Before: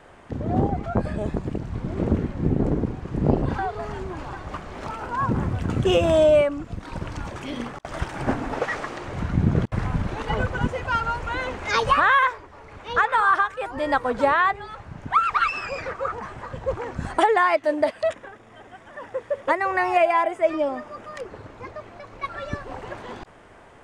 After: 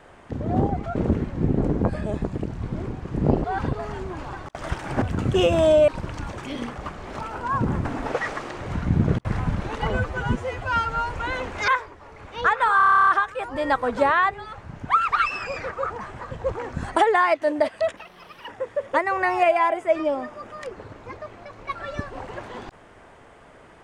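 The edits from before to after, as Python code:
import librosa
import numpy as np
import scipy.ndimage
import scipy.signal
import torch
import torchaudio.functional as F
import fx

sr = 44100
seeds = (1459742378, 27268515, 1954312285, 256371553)

y = fx.edit(x, sr, fx.move(start_s=1.98, length_s=0.88, to_s=0.96),
    fx.reverse_span(start_s=3.44, length_s=0.29),
    fx.swap(start_s=4.46, length_s=1.07, other_s=7.76, other_length_s=0.56),
    fx.cut(start_s=6.39, length_s=0.47),
    fx.stretch_span(start_s=10.37, length_s=0.8, factor=1.5),
    fx.cut(start_s=11.75, length_s=0.45),
    fx.stutter(start_s=13.29, slice_s=0.03, count=11),
    fx.speed_span(start_s=18.19, length_s=0.83, speed=1.63), tone=tone)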